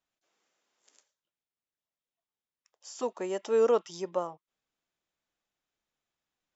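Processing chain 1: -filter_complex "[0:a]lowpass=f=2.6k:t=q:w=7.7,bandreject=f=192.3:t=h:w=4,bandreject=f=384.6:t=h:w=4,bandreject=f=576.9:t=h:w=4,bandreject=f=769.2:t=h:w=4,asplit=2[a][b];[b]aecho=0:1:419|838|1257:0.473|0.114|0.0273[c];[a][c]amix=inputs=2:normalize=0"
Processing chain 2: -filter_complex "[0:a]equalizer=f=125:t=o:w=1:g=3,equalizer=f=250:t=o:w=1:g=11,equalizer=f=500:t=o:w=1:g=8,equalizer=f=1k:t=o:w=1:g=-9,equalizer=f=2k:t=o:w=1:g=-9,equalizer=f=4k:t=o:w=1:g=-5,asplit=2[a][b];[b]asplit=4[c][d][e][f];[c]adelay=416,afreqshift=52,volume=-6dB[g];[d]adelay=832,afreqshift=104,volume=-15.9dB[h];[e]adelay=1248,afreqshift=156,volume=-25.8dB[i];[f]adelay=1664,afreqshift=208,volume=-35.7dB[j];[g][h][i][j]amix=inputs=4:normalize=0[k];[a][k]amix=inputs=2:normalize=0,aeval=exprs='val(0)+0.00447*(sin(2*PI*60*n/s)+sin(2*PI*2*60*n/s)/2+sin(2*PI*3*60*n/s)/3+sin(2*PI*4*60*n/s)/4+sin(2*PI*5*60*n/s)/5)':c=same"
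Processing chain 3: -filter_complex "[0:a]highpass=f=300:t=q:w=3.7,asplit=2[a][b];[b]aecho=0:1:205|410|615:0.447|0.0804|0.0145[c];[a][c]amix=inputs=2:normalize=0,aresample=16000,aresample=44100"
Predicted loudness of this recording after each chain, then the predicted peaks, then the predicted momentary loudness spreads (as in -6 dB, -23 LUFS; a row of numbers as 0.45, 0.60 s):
-29.5, -21.5, -25.5 LUFS; -14.5, -6.5, -12.0 dBFS; 15, 20, 15 LU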